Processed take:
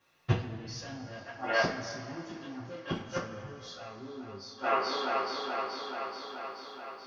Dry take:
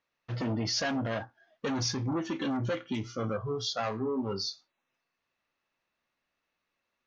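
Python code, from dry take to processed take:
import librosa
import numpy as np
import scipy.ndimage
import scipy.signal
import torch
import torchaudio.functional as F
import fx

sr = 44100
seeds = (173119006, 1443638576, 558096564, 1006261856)

y = fx.echo_wet_bandpass(x, sr, ms=430, feedback_pct=69, hz=1300.0, wet_db=-5)
y = fx.gate_flip(y, sr, shuts_db=-28.0, range_db=-27)
y = fx.rev_double_slope(y, sr, seeds[0], early_s=0.31, late_s=3.1, knee_db=-18, drr_db=-9.5)
y = y * librosa.db_to_amplitude(4.5)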